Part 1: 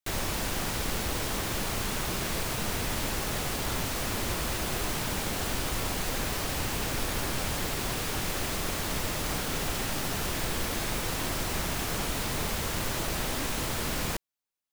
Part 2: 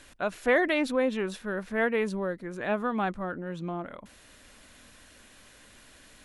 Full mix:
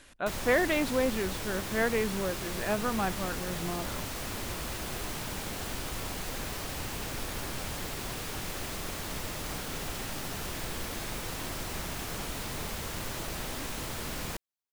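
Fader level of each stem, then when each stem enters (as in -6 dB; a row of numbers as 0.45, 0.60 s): -5.5, -2.0 dB; 0.20, 0.00 s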